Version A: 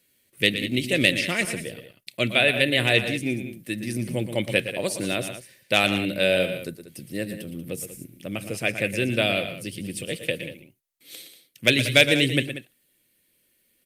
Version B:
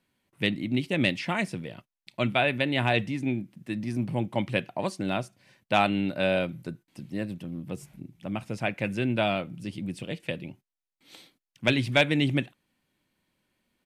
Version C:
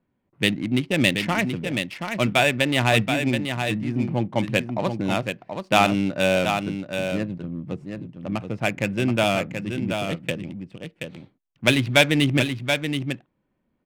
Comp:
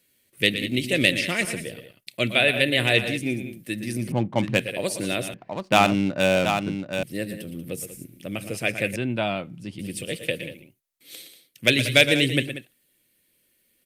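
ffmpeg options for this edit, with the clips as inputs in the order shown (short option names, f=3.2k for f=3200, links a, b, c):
-filter_complex "[2:a]asplit=2[a][b];[0:a]asplit=4[c][d][e][f];[c]atrim=end=4.122[g];[a]atrim=start=4.118:end=4.602[h];[d]atrim=start=4.598:end=5.342[i];[b]atrim=start=5.338:end=7.032[j];[e]atrim=start=7.028:end=8.962[k];[1:a]atrim=start=8.958:end=9.792[l];[f]atrim=start=9.788[m];[g][h]acrossfade=d=0.004:c1=hsin:c2=hsin[n];[n][i]acrossfade=d=0.004:c1=hsin:c2=hsin[o];[o][j]acrossfade=d=0.004:c1=hsin:c2=hsin[p];[p][k]acrossfade=d=0.004:c1=hsin:c2=hsin[q];[q][l]acrossfade=d=0.004:c1=hsin:c2=hsin[r];[r][m]acrossfade=d=0.004:c1=hsin:c2=hsin"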